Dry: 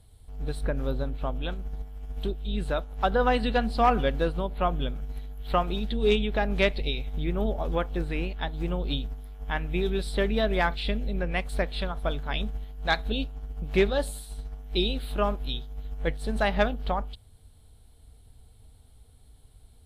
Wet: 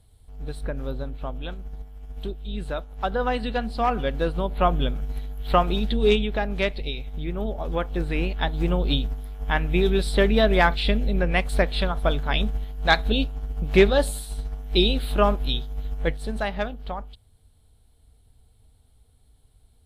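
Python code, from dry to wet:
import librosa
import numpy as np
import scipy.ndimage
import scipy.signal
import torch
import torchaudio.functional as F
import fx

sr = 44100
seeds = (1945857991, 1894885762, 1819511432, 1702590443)

y = fx.gain(x, sr, db=fx.line((3.96, -1.5), (4.58, 5.5), (5.92, 5.5), (6.55, -1.0), (7.52, -1.0), (8.38, 6.5), (15.88, 6.5), (16.57, -4.0)))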